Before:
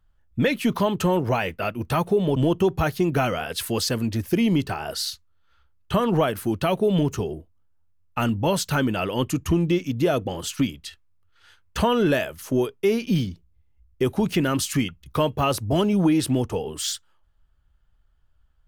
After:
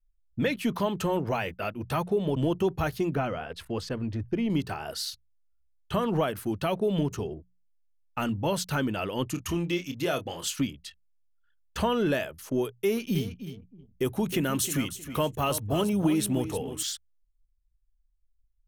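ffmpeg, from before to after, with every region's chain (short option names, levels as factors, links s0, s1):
-filter_complex "[0:a]asettb=1/sr,asplit=3[s0][s1][s2];[s0]atrim=end=3.154[s3];[s1]atrim=start=3.15:end=4.5,asetpts=PTS-STARTPTS,afade=t=in:d=0.004:c=qsin,afade=t=out:st=1.346:d=0.004:c=qsin,lowpass=f=1600:p=1,asubboost=boost=6:cutoff=87[s4];[s2]atrim=start=4.496[s5];[s3][s4]acrossfade=d=0.004:c1=hsin:c2=qsin[s6];[s6][s5]acrossfade=d=0.004:c1=qsin:c2=hsin,asettb=1/sr,asplit=3[s7][s8][s9];[s7]atrim=end=9.344[s10];[s8]atrim=start=9.34:end=10.59,asetpts=PTS-STARTPTS,afade=t=in:d=0.004:c=qsin,afade=t=out:st=1.246:d=0.004:c=qsin,tiltshelf=f=860:g=-5,asplit=2[s11][s12];[s12]adelay=29,volume=0.355[s13];[s11][s13]amix=inputs=2:normalize=0,atrim=end_sample=55125[s14];[s9]atrim=start=10.586[s15];[s10][s14]acrossfade=d=0.004:c1=hsin:c2=qsin[s16];[s16][s15]acrossfade=d=0.004:c1=qsin:c2=hsin,asettb=1/sr,asplit=3[s17][s18][s19];[s17]atrim=end=12.654[s20];[s18]atrim=start=12.65:end=16.83,asetpts=PTS-STARTPTS,afade=t=in:d=0.004:c=qsin,afade=t=out:st=4.176:d=0.004:c=qsin,highshelf=f=8400:g=11,bandreject=f=4800:w=7.3,aecho=1:1:313|626|939:0.266|0.0665|0.0166,atrim=end_sample=184338[s21];[s19]atrim=start=16.826[s22];[s20][s21]acrossfade=d=0.004:c1=hsin:c2=qsin[s23];[s23][s22]acrossfade=d=0.004:c1=qsin:c2=hsin,anlmdn=0.0631,bandreject=f=60:t=h:w=6,bandreject=f=120:t=h:w=6,bandreject=f=180:t=h:w=6,volume=0.531"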